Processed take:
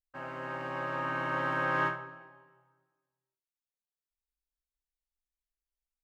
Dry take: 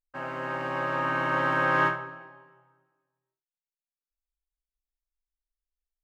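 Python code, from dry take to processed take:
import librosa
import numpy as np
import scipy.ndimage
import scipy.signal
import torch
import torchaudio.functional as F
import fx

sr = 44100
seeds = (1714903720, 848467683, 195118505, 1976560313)

y = fx.peak_eq(x, sr, hz=70.0, db=7.0, octaves=0.87)
y = y * librosa.db_to_amplitude(-6.0)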